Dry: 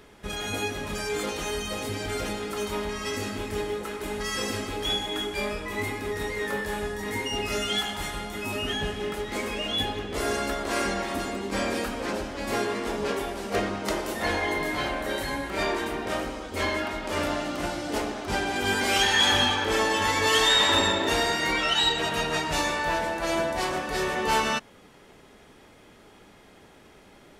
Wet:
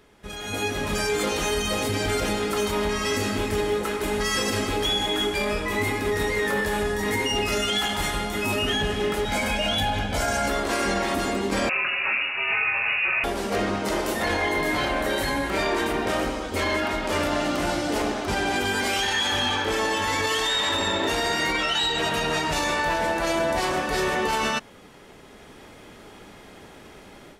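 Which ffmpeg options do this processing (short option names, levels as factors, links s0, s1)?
-filter_complex "[0:a]asettb=1/sr,asplit=3[s0][s1][s2];[s0]atrim=end=9.254[s3];[s1]atrim=start=9.25:end=10.48,asetpts=PTS-STARTPTS,afade=t=in:d=0.004:c=qsin,afade=t=out:st=1.226:d=0.004:c=qsin,aecho=1:1:1.3:0.83,atrim=end_sample=54243[s4];[s2]atrim=start=10.476[s5];[s3][s4]acrossfade=d=0.004:c1=hsin:c2=qsin[s6];[s6][s5]acrossfade=d=0.004:c1=qsin:c2=hsin,asettb=1/sr,asplit=3[s7][s8][s9];[s7]atrim=end=11.694[s10];[s8]atrim=start=11.69:end=13.24,asetpts=PTS-STARTPTS,afade=t=in:d=0.004:c=qsin,afade=t=out:st=1.546:d=0.004:c=qsin,lowpass=f=2500:t=q:w=0.5098,lowpass=f=2500:t=q:w=0.6013,lowpass=f=2500:t=q:w=0.9,lowpass=f=2500:t=q:w=2.563,afreqshift=-2900[s11];[s9]atrim=start=13.236[s12];[s10][s11]acrossfade=d=0.004:c1=hsin:c2=qsin[s13];[s13][s12]acrossfade=d=0.004:c1=qsin:c2=hsin,dynaudnorm=f=420:g=3:m=3.76,alimiter=limit=0.282:level=0:latency=1:release=34,volume=0.596"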